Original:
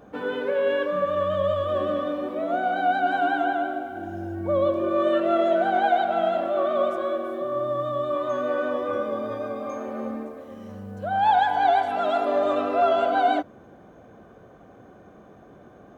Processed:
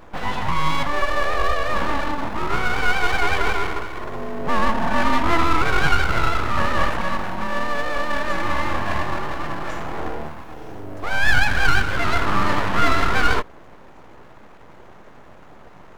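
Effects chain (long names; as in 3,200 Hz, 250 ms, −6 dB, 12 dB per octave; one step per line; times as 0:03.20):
full-wave rectification
level +6.5 dB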